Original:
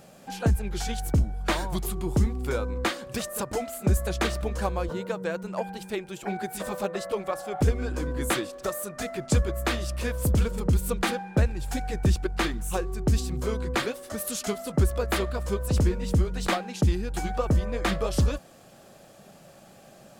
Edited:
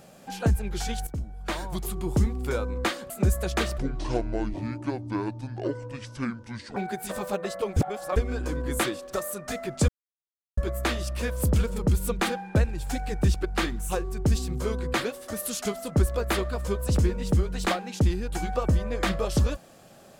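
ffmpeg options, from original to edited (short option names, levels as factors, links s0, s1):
-filter_complex "[0:a]asplit=8[s0][s1][s2][s3][s4][s5][s6][s7];[s0]atrim=end=1.07,asetpts=PTS-STARTPTS,afade=t=out:st=1.066:d=0.004:c=hsin:silence=0.223872[s8];[s1]atrim=start=1.07:end=3.102,asetpts=PTS-STARTPTS,afade=t=in:d=1.01:silence=0.223872[s9];[s2]atrim=start=3.738:end=4.424[s10];[s3]atrim=start=4.42:end=6.27,asetpts=PTS-STARTPTS,asetrate=27342,aresample=44100[s11];[s4]atrim=start=6.266:end=7.272[s12];[s5]atrim=start=7.268:end=7.672,asetpts=PTS-STARTPTS,areverse[s13];[s6]atrim=start=7.668:end=9.39,asetpts=PTS-STARTPTS,afade=t=out:st=1.718:d=0.004:c=hsin,apad=pad_dur=0.69[s14];[s7]atrim=start=9.39,asetpts=PTS-STARTPTS,afade=t=in:d=0.004:c=hsin[s15];[s8][s9]concat=n=2:v=0:a=1[s16];[s16][s10]acrossfade=d=0.004:c1=hsin:c2=hsin[s17];[s17][s11]acrossfade=d=0.004:c1=hsin:c2=hsin[s18];[s18][s12]acrossfade=d=0.004:c1=hsin:c2=hsin[s19];[s19][s13]acrossfade=d=0.004:c1=hsin:c2=hsin[s20];[s14][s15]concat=n=2:v=0:a=1[s21];[s20][s21]acrossfade=d=0.004:c1=hsin:c2=hsin"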